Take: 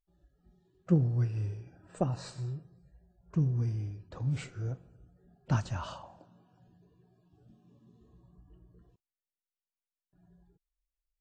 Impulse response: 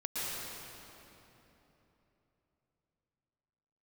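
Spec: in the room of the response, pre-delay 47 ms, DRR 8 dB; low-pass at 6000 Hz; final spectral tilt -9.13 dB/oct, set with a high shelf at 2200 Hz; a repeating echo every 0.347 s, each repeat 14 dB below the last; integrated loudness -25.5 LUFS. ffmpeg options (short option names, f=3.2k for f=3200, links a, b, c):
-filter_complex "[0:a]lowpass=6k,highshelf=f=2.2k:g=-3,aecho=1:1:347|694:0.2|0.0399,asplit=2[a][b];[1:a]atrim=start_sample=2205,adelay=47[c];[b][c]afir=irnorm=-1:irlink=0,volume=-13dB[d];[a][d]amix=inputs=2:normalize=0,volume=8dB"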